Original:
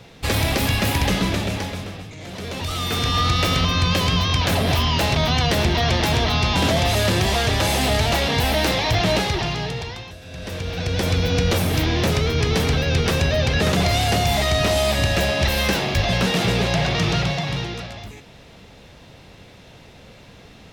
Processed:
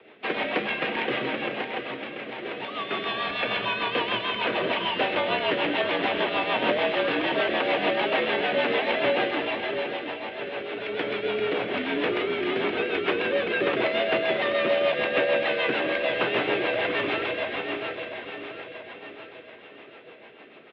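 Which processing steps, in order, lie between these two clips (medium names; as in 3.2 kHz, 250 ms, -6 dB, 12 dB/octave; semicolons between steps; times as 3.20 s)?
3.08–3.79 s: comb 1.2 ms, depth 62%; feedback delay 688 ms, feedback 52%, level -7 dB; mistuned SSB -57 Hz 340–3100 Hz; rotary cabinet horn 6.7 Hz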